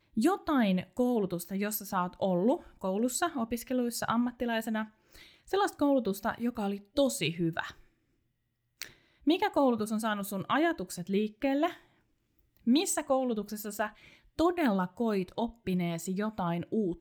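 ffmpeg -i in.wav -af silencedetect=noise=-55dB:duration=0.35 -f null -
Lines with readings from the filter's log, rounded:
silence_start: 7.87
silence_end: 8.80 | silence_duration: 0.93
silence_start: 11.86
silence_end: 12.39 | silence_duration: 0.53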